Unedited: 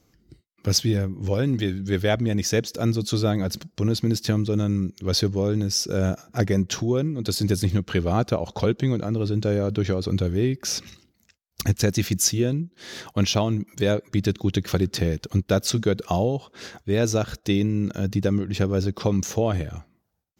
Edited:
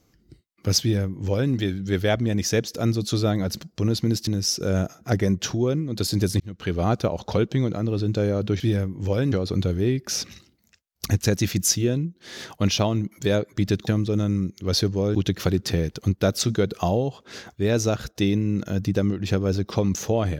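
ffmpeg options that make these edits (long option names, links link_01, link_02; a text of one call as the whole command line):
ffmpeg -i in.wav -filter_complex "[0:a]asplit=7[link_01][link_02][link_03][link_04][link_05][link_06][link_07];[link_01]atrim=end=4.272[link_08];[link_02]atrim=start=5.548:end=7.68,asetpts=PTS-STARTPTS,afade=type=out:start_time=2.128:duration=0.004:curve=hsin[link_09];[link_03]atrim=start=7.68:end=9.882,asetpts=PTS-STARTPTS,afade=type=in:duration=0.42[link_10];[link_04]atrim=start=0.808:end=1.532[link_11];[link_05]atrim=start=9.878:end=14.432[link_12];[link_06]atrim=start=4.268:end=5.552[link_13];[link_07]atrim=start=14.428[link_14];[link_09][link_10]concat=n=2:v=0:a=1[link_15];[link_08][link_15]acrossfade=duration=0.004:curve1=hsin:curve2=hsin[link_16];[link_16][link_11]acrossfade=duration=0.004:curve1=hsin:curve2=hsin[link_17];[link_17][link_12]acrossfade=duration=0.004:curve1=hsin:curve2=hsin[link_18];[link_18][link_13]acrossfade=duration=0.004:curve1=hsin:curve2=hsin[link_19];[link_19][link_14]acrossfade=duration=0.004:curve1=hsin:curve2=hsin" out.wav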